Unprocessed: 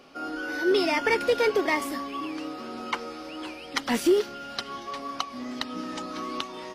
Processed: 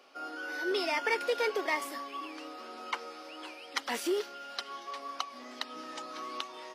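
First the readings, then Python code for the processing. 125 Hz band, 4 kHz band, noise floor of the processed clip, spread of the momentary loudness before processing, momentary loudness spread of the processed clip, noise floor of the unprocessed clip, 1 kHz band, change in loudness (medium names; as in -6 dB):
under -20 dB, -5.0 dB, -49 dBFS, 13 LU, 14 LU, -42 dBFS, -5.0 dB, -7.0 dB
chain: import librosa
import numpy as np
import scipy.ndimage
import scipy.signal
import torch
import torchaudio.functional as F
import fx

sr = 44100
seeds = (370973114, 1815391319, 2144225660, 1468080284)

y = scipy.signal.sosfilt(scipy.signal.butter(2, 460.0, 'highpass', fs=sr, output='sos'), x)
y = y * 10.0 ** (-5.0 / 20.0)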